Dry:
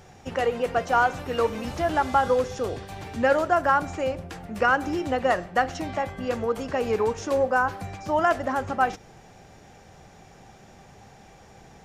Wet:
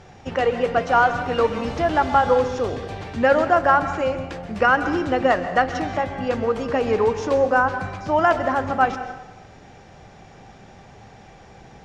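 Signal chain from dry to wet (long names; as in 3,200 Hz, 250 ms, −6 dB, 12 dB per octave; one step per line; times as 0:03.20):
low-pass filter 5,200 Hz 12 dB per octave
dense smooth reverb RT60 0.92 s, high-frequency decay 0.75×, pre-delay 115 ms, DRR 10 dB
level +4 dB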